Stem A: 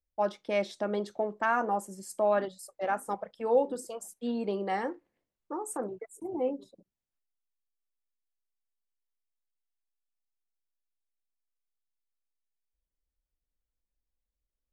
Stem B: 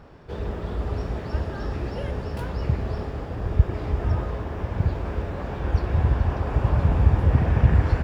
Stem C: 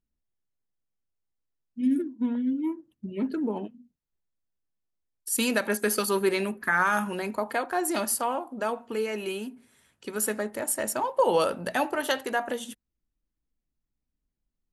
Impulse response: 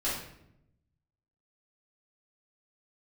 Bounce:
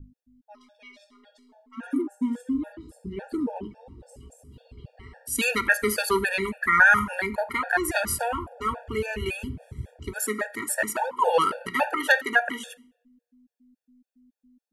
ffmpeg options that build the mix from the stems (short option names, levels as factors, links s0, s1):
-filter_complex "[0:a]highpass=1400,adelay=300,volume=0.224,asplit=2[s0][s1];[s1]volume=0.473[s2];[1:a]afwtdn=0.0562,highshelf=f=3200:g=12,adelay=2150,volume=0.141[s3];[2:a]adynamicequalizer=threshold=0.00631:dfrequency=2000:dqfactor=1.3:tfrequency=2000:tqfactor=1.3:attack=5:release=100:ratio=0.375:range=4:mode=boostabove:tftype=bell,aeval=exprs='val(0)+0.00891*(sin(2*PI*50*n/s)+sin(2*PI*2*50*n/s)/2+sin(2*PI*3*50*n/s)/3+sin(2*PI*4*50*n/s)/4+sin(2*PI*5*50*n/s)/5)':c=same,volume=1.19,asplit=2[s4][s5];[s5]volume=0.0668[s6];[3:a]atrim=start_sample=2205[s7];[s2][s6]amix=inputs=2:normalize=0[s8];[s8][s7]afir=irnorm=-1:irlink=0[s9];[s0][s3][s4][s9]amix=inputs=4:normalize=0,bandreject=f=50:t=h:w=6,bandreject=f=100:t=h:w=6,bandreject=f=150:t=h:w=6,bandreject=f=200:t=h:w=6,adynamicequalizer=threshold=0.0141:dfrequency=1600:dqfactor=1.6:tfrequency=1600:tqfactor=1.6:attack=5:release=100:ratio=0.375:range=3:mode=boostabove:tftype=bell,afftfilt=real='re*gt(sin(2*PI*3.6*pts/sr)*(1-2*mod(floor(b*sr/1024/470),2)),0)':imag='im*gt(sin(2*PI*3.6*pts/sr)*(1-2*mod(floor(b*sr/1024/470),2)),0)':win_size=1024:overlap=0.75"